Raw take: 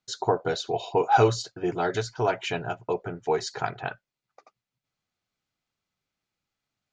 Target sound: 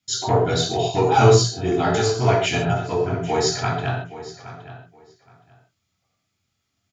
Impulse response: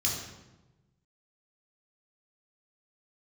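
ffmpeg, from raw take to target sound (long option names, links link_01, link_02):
-filter_complex "[0:a]asplit=2[link_01][link_02];[link_02]asoftclip=type=tanh:threshold=-20dB,volume=-4dB[link_03];[link_01][link_03]amix=inputs=2:normalize=0,asplit=2[link_04][link_05];[link_05]adelay=819,lowpass=frequency=4200:poles=1,volume=-14.5dB,asplit=2[link_06][link_07];[link_07]adelay=819,lowpass=frequency=4200:poles=1,volume=0.19[link_08];[link_04][link_06][link_08]amix=inputs=3:normalize=0[link_09];[1:a]atrim=start_sample=2205,afade=type=out:start_time=0.2:duration=0.01,atrim=end_sample=9261[link_10];[link_09][link_10]afir=irnorm=-1:irlink=0,volume=-3dB"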